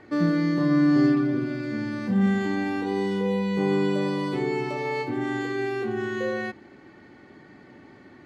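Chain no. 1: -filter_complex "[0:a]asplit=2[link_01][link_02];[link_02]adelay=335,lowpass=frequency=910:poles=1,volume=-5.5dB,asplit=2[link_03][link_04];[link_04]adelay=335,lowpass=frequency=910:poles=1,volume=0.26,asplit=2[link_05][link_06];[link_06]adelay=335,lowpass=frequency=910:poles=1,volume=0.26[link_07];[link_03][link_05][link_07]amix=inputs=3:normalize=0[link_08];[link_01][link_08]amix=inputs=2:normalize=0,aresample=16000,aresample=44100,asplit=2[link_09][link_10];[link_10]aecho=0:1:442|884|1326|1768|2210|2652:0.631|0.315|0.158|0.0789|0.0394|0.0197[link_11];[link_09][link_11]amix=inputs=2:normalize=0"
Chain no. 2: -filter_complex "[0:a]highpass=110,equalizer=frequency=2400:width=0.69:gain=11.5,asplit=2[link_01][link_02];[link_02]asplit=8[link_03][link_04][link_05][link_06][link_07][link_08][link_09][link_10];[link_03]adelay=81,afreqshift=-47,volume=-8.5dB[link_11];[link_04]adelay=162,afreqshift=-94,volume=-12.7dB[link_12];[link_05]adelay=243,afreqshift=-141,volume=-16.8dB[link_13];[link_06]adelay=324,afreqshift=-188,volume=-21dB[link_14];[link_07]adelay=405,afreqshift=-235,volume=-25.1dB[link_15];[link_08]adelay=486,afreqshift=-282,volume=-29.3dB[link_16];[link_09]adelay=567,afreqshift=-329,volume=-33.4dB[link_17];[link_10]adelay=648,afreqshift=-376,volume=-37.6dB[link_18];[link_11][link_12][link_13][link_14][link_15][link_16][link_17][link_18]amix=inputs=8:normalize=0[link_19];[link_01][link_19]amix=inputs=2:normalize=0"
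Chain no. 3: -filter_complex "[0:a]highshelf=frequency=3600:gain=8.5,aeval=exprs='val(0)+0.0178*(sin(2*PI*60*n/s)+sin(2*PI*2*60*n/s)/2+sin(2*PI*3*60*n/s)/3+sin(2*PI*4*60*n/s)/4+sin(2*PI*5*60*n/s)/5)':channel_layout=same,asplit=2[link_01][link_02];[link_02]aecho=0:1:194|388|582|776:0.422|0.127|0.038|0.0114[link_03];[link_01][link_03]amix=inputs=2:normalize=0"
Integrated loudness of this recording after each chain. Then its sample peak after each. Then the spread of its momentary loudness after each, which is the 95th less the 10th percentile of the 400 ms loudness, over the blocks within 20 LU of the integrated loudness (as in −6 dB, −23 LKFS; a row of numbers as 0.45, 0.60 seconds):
−24.0, −22.0, −22.5 LKFS; −9.0, −6.0, −7.5 dBFS; 15, 8, 22 LU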